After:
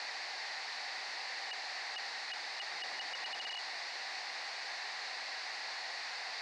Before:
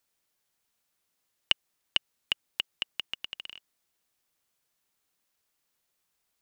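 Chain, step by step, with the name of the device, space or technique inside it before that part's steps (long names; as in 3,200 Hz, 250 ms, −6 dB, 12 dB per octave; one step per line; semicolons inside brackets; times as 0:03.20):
home computer beeper (sign of each sample alone; loudspeaker in its box 760–4,600 Hz, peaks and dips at 770 Hz +9 dB, 1,300 Hz −5 dB, 1,900 Hz +8 dB, 3,200 Hz −9 dB, 4,500 Hz +7 dB)
0:02.71–0:03.48: low-shelf EQ 440 Hz +6 dB
level +4.5 dB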